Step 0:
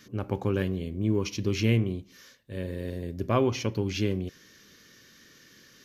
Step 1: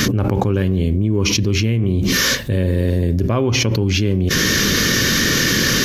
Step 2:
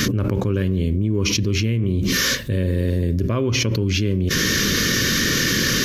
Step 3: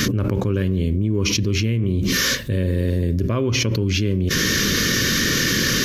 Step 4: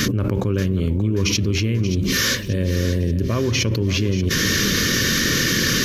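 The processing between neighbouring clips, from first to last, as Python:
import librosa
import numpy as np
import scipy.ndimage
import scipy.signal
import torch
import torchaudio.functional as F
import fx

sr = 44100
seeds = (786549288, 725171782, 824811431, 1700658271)

y1 = fx.low_shelf(x, sr, hz=180.0, db=7.5)
y1 = fx.env_flatten(y1, sr, amount_pct=100)
y2 = fx.peak_eq(y1, sr, hz=790.0, db=-15.0, octaves=0.29)
y2 = y2 * librosa.db_to_amplitude(-3.0)
y3 = y2
y4 = fx.echo_feedback(y3, sr, ms=582, feedback_pct=47, wet_db=-13)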